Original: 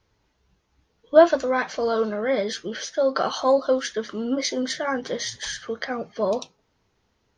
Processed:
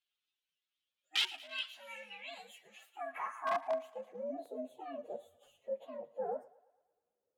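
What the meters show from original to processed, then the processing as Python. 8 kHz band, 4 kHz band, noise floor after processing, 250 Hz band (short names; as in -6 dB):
-22.0 dB, -7.5 dB, under -85 dBFS, -24.5 dB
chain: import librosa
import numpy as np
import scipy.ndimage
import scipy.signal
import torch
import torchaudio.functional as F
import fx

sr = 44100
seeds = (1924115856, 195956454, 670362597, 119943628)

p1 = fx.partial_stretch(x, sr, pct=130)
p2 = fx.high_shelf(p1, sr, hz=6400.0, db=9.0)
p3 = (np.mod(10.0 ** (13.0 / 20.0) * p2 + 1.0, 2.0) - 1.0) / 10.0 ** (13.0 / 20.0)
p4 = fx.filter_sweep_bandpass(p3, sr, from_hz=3200.0, to_hz=500.0, start_s=1.89, end_s=4.46, q=4.1)
p5 = p4 + fx.echo_thinned(p4, sr, ms=112, feedback_pct=65, hz=500.0, wet_db=-20, dry=0)
y = p5 * librosa.db_to_amplitude(-3.5)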